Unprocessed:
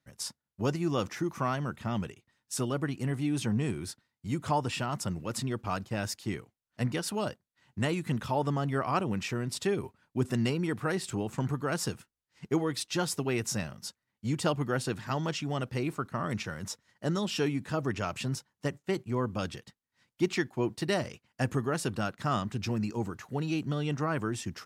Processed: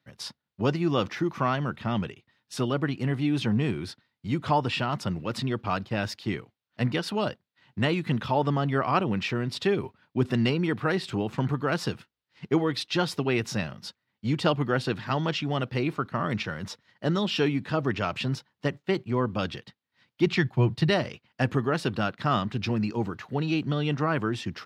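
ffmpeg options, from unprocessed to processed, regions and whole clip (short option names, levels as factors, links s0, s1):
-filter_complex "[0:a]asettb=1/sr,asplit=3[s0][s1][s2];[s0]atrim=end=20.264[s3];[s1]atrim=start=20.26:end=20.9,asetpts=PTS-STARTPTS,afade=t=in:d=0.004:c=qsin,afade=t=out:st=0.636:d=0.004:c=qsin,highpass=91,lowshelf=f=190:t=q:w=1.5:g=10[s4];[s2]atrim=start=20.896[s5];[s3][s4]acrossfade=d=0.004:c1=hsin:c2=qsin[s6];[s6][s5]acrossfade=d=0.004:c1=qsin:c2=hsin,highpass=81,highshelf=f=5500:t=q:w=1.5:g=-11.5,volume=1.68"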